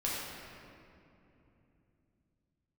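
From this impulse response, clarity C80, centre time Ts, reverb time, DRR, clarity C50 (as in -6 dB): 0.0 dB, 0.14 s, 3.0 s, -7.0 dB, -2.0 dB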